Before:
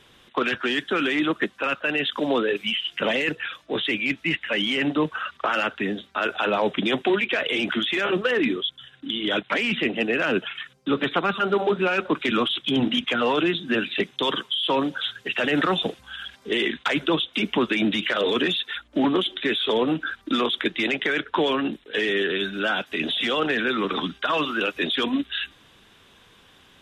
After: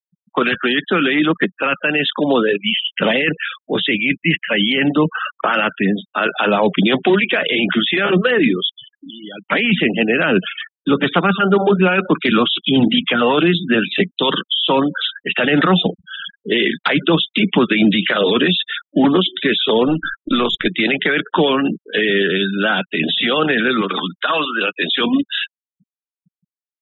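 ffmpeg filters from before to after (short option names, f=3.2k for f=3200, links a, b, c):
-filter_complex "[0:a]asettb=1/sr,asplit=3[a][b][c];[a]atrim=end=8.924[d];[b]atrim=start=8.92:end=9.44,asetpts=PTS-STARTPTS,afade=t=in:d=0.004:c=qsin,afade=t=out:st=0.516:d=0.004:c=qsin,acompressor=threshold=-49dB:ratio=2:attack=3.2:release=140:knee=1:detection=peak[e];[c]atrim=start=9.436[f];[d][e]acrossfade=d=0.004:c1=hsin:c2=qsin[g];[g][f]acrossfade=d=0.004:c1=qsin:c2=hsin,asettb=1/sr,asplit=3[h][i][j];[h]atrim=end=19.884[k];[i]atrim=start=19.88:end=20.68,asetpts=PTS-STARTPTS,afade=t=in:d=0.004:c=qsin,afade=t=out:st=0.796:d=0.004:c=qsin,aeval=exprs='if(lt(val(0),0),0.708*val(0),val(0))':c=same[l];[j]atrim=start=20.676[m];[k][l]acrossfade=d=0.004:c1=hsin:c2=qsin[n];[n][m]acrossfade=d=0.004:c1=qsin:c2=hsin,asettb=1/sr,asplit=3[o][p][q];[o]atrim=end=23.814[r];[p]atrim=start=23.81:end=25.01,asetpts=PTS-STARTPTS,afade=t=in:d=0.004:c=qsin,afade=t=out:st=1.196:d=0.004:c=qsin,highpass=f=460:p=1[s];[q]atrim=start=25.006[t];[r][s]acrossfade=d=0.004:c1=hsin:c2=qsin[u];[u][t]acrossfade=d=0.004:c1=qsin:c2=hsin,equalizer=f=180:t=o:w=0.41:g=9.5,bandreject=f=1k:w=29,afftfilt=real='re*gte(hypot(re,im),0.0224)':imag='im*gte(hypot(re,im),0.0224)':win_size=1024:overlap=0.75,volume=7dB"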